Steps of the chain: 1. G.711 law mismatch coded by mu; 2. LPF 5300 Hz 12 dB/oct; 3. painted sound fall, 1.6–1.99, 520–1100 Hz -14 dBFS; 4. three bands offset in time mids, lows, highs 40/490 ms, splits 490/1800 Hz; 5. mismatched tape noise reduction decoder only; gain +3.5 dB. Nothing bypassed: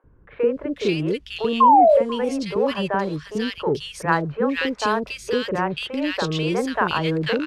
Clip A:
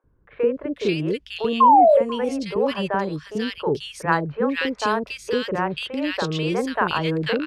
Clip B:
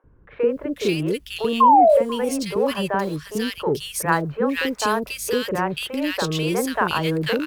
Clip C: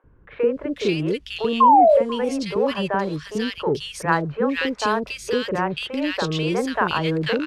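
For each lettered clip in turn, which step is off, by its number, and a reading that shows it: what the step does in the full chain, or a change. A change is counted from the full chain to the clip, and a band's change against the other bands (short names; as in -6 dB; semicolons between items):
1, distortion -25 dB; 2, 8 kHz band +9.5 dB; 5, 8 kHz band +1.5 dB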